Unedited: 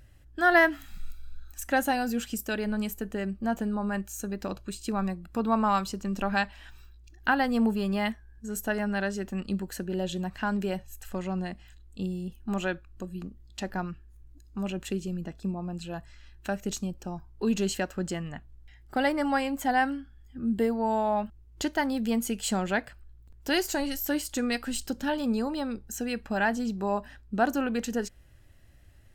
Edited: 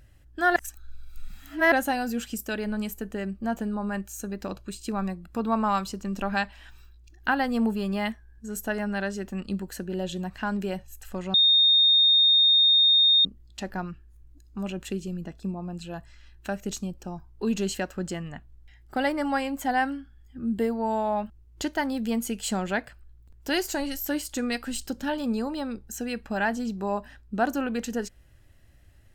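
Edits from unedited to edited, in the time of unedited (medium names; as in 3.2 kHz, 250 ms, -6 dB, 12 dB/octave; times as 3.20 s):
0.56–1.72 s: reverse
11.34–13.25 s: bleep 3.68 kHz -15.5 dBFS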